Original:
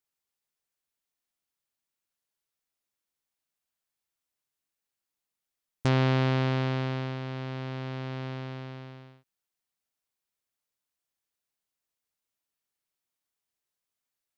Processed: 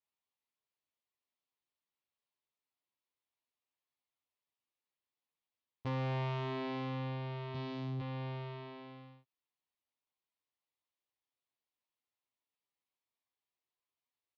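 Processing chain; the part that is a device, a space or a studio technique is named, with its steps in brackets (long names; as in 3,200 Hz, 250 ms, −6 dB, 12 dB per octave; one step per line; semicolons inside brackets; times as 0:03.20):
0:07.54–0:08.00: bass and treble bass +11 dB, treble +11 dB
barber-pole flanger into a guitar amplifier (barber-pole flanger 10.4 ms +0.94 Hz; soft clipping −32 dBFS, distortion −8 dB; loudspeaker in its box 77–4,200 Hz, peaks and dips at 180 Hz −8 dB, 1,000 Hz +5 dB, 1,500 Hz −8 dB)
level −1 dB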